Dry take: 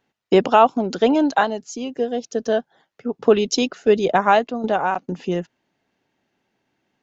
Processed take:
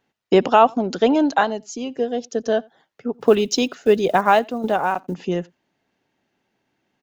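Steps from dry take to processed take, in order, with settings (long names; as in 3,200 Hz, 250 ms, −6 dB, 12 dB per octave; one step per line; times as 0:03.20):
0:03.14–0:05.15: one scale factor per block 7 bits
slap from a distant wall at 15 metres, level −28 dB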